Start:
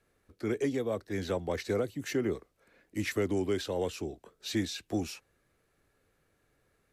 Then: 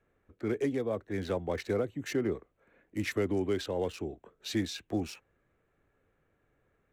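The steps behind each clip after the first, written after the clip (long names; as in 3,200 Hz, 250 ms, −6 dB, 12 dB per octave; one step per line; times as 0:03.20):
adaptive Wiener filter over 9 samples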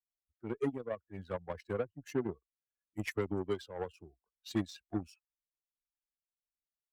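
spectral dynamics exaggerated over time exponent 2
harmonic generator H 7 −21 dB, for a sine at −20.5 dBFS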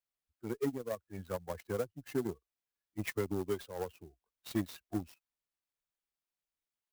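in parallel at −4.5 dB: soft clipping −29.5 dBFS, distortion −12 dB
on the sum: converter with an unsteady clock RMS 0.037 ms
level −3 dB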